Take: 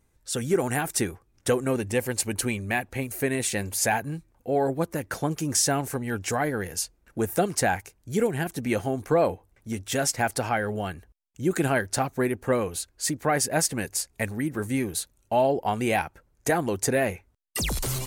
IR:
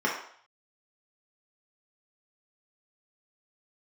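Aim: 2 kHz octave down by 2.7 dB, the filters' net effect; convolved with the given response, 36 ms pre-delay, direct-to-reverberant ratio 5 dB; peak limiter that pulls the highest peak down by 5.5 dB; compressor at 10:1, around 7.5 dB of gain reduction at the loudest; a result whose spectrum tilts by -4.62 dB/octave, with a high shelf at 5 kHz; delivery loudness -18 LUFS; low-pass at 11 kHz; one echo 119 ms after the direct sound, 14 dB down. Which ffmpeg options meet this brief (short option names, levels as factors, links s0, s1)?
-filter_complex "[0:a]lowpass=11000,equalizer=f=2000:t=o:g=-3,highshelf=f=5000:g=-3.5,acompressor=threshold=0.0562:ratio=10,alimiter=limit=0.0841:level=0:latency=1,aecho=1:1:119:0.2,asplit=2[s0][s1];[1:a]atrim=start_sample=2205,adelay=36[s2];[s1][s2]afir=irnorm=-1:irlink=0,volume=0.133[s3];[s0][s3]amix=inputs=2:normalize=0,volume=4.73"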